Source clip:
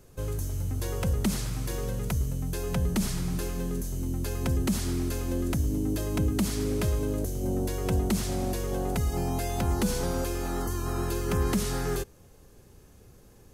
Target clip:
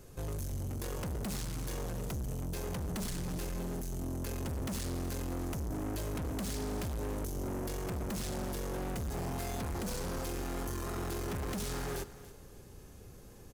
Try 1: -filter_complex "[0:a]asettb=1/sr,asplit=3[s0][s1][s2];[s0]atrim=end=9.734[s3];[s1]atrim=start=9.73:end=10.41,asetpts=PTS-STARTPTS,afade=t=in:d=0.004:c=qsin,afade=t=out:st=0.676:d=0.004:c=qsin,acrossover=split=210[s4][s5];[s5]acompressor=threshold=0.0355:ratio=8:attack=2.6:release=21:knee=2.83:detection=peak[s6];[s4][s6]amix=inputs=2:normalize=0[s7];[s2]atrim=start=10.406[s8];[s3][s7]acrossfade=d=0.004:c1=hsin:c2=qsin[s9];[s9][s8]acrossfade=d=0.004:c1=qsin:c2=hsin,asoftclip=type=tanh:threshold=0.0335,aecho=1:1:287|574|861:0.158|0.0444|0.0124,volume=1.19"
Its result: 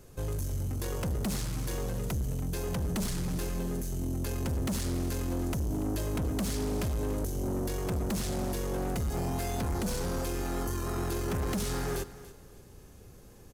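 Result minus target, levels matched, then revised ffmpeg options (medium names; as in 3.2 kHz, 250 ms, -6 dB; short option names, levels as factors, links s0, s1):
saturation: distortion -4 dB
-filter_complex "[0:a]asettb=1/sr,asplit=3[s0][s1][s2];[s0]atrim=end=9.734[s3];[s1]atrim=start=9.73:end=10.41,asetpts=PTS-STARTPTS,afade=t=in:d=0.004:c=qsin,afade=t=out:st=0.676:d=0.004:c=qsin,acrossover=split=210[s4][s5];[s5]acompressor=threshold=0.0355:ratio=8:attack=2.6:release=21:knee=2.83:detection=peak[s6];[s4][s6]amix=inputs=2:normalize=0[s7];[s2]atrim=start=10.406[s8];[s3][s7]acrossfade=d=0.004:c1=hsin:c2=qsin[s9];[s9][s8]acrossfade=d=0.004:c1=qsin:c2=hsin,asoftclip=type=tanh:threshold=0.015,aecho=1:1:287|574|861:0.158|0.0444|0.0124,volume=1.19"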